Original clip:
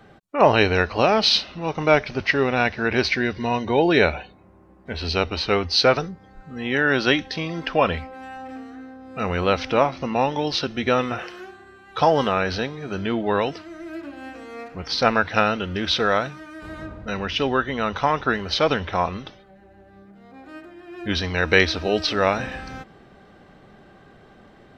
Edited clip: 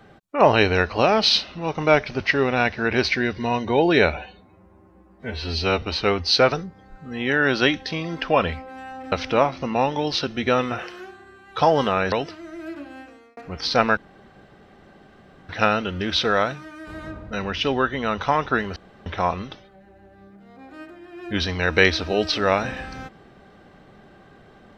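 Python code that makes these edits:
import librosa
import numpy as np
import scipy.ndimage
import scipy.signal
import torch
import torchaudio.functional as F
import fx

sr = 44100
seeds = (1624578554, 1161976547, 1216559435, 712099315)

y = fx.edit(x, sr, fx.stretch_span(start_s=4.17, length_s=1.1, factor=1.5),
    fx.cut(start_s=8.57, length_s=0.95),
    fx.cut(start_s=12.52, length_s=0.87),
    fx.fade_out_span(start_s=14.07, length_s=0.57),
    fx.insert_room_tone(at_s=15.24, length_s=1.52),
    fx.room_tone_fill(start_s=18.51, length_s=0.3), tone=tone)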